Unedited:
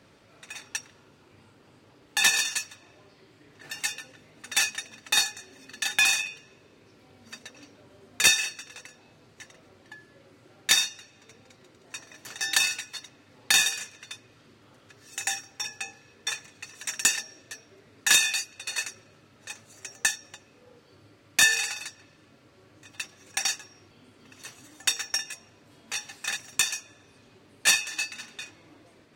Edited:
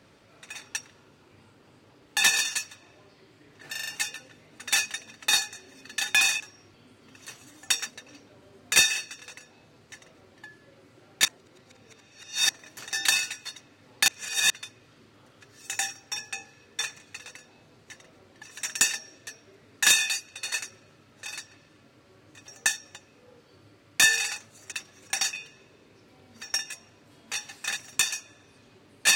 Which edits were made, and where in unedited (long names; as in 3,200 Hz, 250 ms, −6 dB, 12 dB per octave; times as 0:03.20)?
0:03.71: stutter 0.04 s, 5 plays
0:06.24–0:07.34: swap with 0:23.57–0:25.03
0:08.69–0:09.93: duplicate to 0:16.67
0:10.73–0:11.97: reverse
0:13.56–0:13.98: reverse
0:19.51–0:19.87: swap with 0:21.75–0:22.96